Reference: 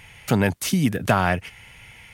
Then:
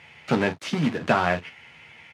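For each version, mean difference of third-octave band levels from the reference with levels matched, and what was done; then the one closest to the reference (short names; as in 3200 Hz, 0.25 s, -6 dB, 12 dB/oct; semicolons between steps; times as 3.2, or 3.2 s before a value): 5.0 dB: companded quantiser 4-bit; BPF 160–3500 Hz; on a send: early reflections 13 ms -5.5 dB, 45 ms -13 dB; on the sum: gain -2.5 dB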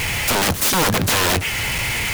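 16.5 dB: zero-crossing step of -28.5 dBFS; in parallel at -2 dB: compressor 10:1, threshold -29 dBFS, peak gain reduction 16.5 dB; on the sum: wrapped overs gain 18 dB; gain +5.5 dB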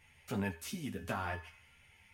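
2.5 dB: resonator 82 Hz, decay 0.47 s, harmonics odd, mix 70%; thinning echo 76 ms, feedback 65%, high-pass 610 Hz, level -21 dB; ensemble effect; gain -6 dB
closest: third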